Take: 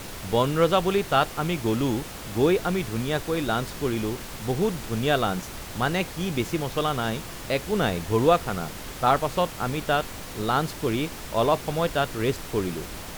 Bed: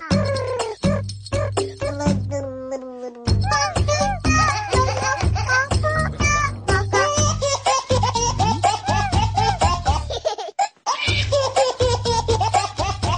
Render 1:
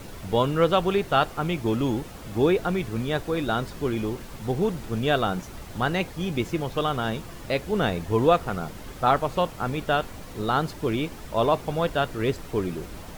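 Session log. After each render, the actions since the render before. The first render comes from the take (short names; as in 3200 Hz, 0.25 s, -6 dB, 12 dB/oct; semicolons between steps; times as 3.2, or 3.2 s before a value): denoiser 8 dB, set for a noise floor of -38 dBFS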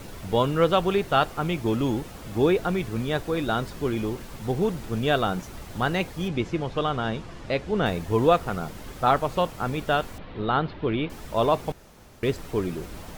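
6.28–7.86 air absorption 80 m; 10.18–11.1 steep low-pass 3800 Hz; 11.72–12.23 room tone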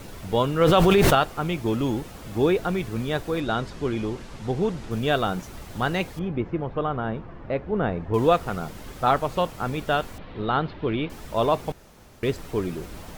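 0.61–1.15 fast leveller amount 100%; 3.4–4.91 LPF 7400 Hz; 6.19–8.14 LPF 1600 Hz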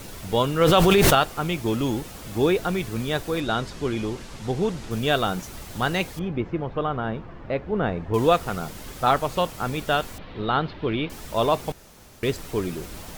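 high shelf 3100 Hz +7 dB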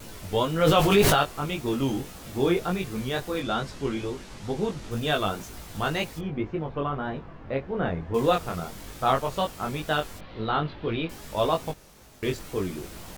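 chorus 0.18 Hz, delay 19 ms, depth 3.3 ms; wow and flutter 84 cents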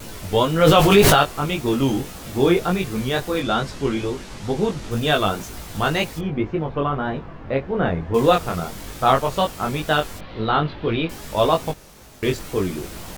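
gain +6.5 dB; limiter -1 dBFS, peak gain reduction 1.5 dB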